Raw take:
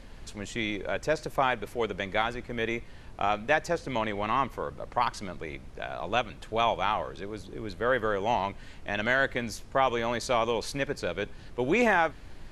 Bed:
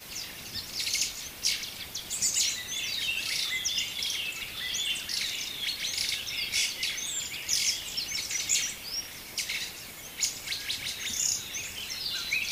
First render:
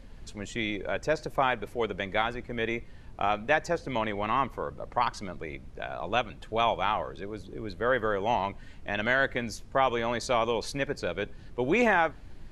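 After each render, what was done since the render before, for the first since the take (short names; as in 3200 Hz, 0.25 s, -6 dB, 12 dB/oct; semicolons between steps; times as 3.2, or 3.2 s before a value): denoiser 6 dB, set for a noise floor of -47 dBFS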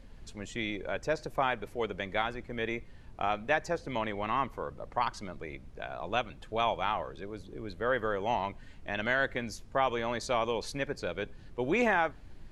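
gain -3.5 dB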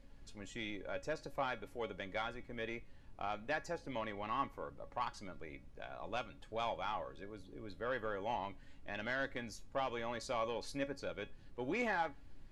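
soft clip -19.5 dBFS, distortion -18 dB; resonator 280 Hz, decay 0.19 s, harmonics all, mix 70%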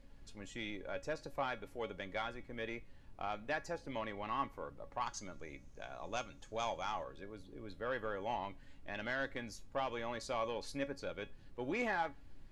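5.05–7.04 bell 6400 Hz +15 dB 0.41 oct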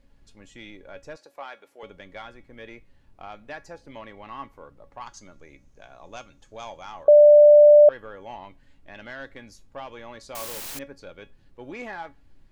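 1.16–1.83 HPF 440 Hz; 7.08–7.89 bleep 592 Hz -8 dBFS; 10.35–10.79 requantised 6-bit, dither triangular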